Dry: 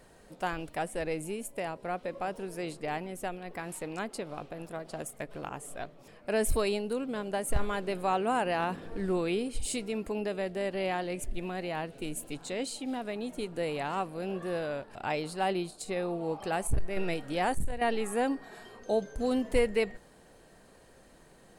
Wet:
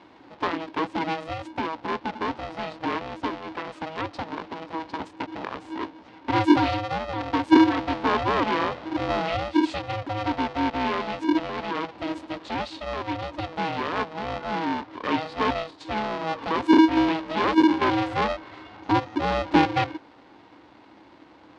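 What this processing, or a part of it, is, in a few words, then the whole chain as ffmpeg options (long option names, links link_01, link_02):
ring modulator pedal into a guitar cabinet: -af "aeval=exprs='val(0)*sgn(sin(2*PI*320*n/s))':channel_layout=same,highpass=85,equalizer=frequency=150:width_type=q:width=4:gain=-9,equalizer=frequency=290:width_type=q:width=4:gain=10,equalizer=frequency=940:width_type=q:width=4:gain=5,lowpass=frequency=4400:width=0.5412,lowpass=frequency=4400:width=1.3066,volume=4dB"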